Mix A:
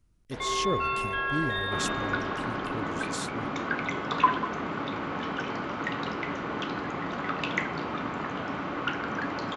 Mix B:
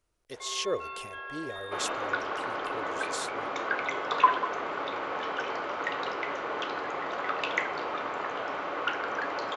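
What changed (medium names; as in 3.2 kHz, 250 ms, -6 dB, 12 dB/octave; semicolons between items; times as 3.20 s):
first sound -11.5 dB; master: add resonant low shelf 320 Hz -13.5 dB, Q 1.5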